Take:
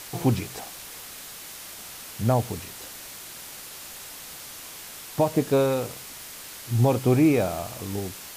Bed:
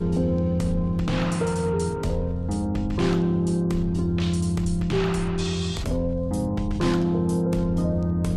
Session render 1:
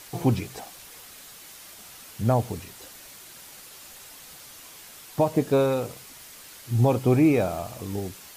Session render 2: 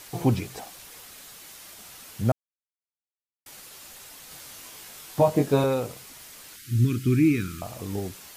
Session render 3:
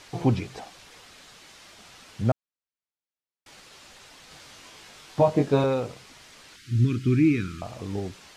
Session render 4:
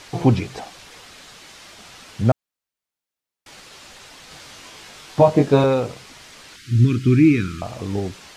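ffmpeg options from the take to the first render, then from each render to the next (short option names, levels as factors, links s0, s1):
-af "afftdn=nr=6:nf=-41"
-filter_complex "[0:a]asettb=1/sr,asplit=3[s0][s1][s2];[s0]atrim=end=4.294[s3];[s1]atrim=start=4.29:end=5.64,asetpts=PTS-STARTPTS,afade=t=in:d=0.004:c=qsin,afade=t=out:st=1.346:d=0.004:c=qsin,asplit=2[s4][s5];[s5]adelay=21,volume=0.708[s6];[s4][s6]amix=inputs=2:normalize=0,atrim=end_sample=59535[s7];[s2]atrim=start=5.636[s8];[s3][s7]acrossfade=d=0.004:c1=hsin:c2=qsin[s9];[s9][s8]acrossfade=d=0.004:c1=qsin:c2=hsin,asettb=1/sr,asplit=3[s10][s11][s12];[s10]atrim=end=6.564[s13];[s11]atrim=start=6.56:end=7.62,asetpts=PTS-STARTPTS,afade=t=in:d=0.004:c=qsin,afade=t=out:st=1.056:d=0.004:c=qsin,asuperstop=centerf=690:order=8:qfactor=0.69[s14];[s12]atrim=start=7.616[s15];[s13][s14]acrossfade=d=0.004:c1=hsin:c2=qsin[s16];[s16][s15]acrossfade=d=0.004:c1=qsin:c2=hsin,asplit=3[s17][s18][s19];[s17]atrim=end=2.32,asetpts=PTS-STARTPTS,afade=t=out:st=2.316:d=0.004:c=hsin[s20];[s18]atrim=start=2.32:end=3.46,asetpts=PTS-STARTPTS,volume=0[s21];[s19]atrim=start=3.46,asetpts=PTS-STARTPTS,afade=t=in:d=0.004:c=hsin[s22];[s20][s21][s22]concat=n=3:v=0:a=1"
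-af "lowpass=5300"
-af "volume=2.11"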